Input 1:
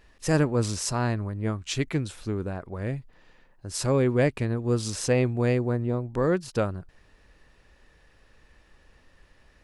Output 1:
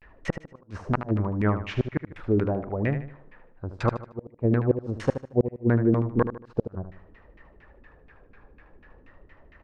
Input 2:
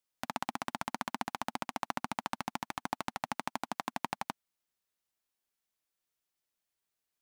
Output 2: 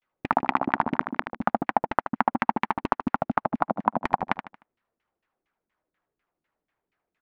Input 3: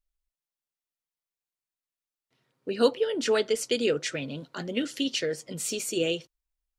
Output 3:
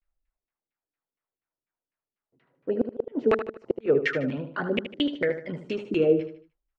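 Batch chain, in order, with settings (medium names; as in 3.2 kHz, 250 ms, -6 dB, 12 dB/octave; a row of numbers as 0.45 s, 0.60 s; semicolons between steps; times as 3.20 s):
LFO low-pass saw down 4.2 Hz 240–2400 Hz; inverted gate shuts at -14 dBFS, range -41 dB; vibrato 0.45 Hz 88 cents; on a send: feedback delay 76 ms, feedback 37%, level -10 dB; on the sum: normalise loudness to -27 LUFS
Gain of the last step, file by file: +3.5 dB, +11.0 dB, +3.0 dB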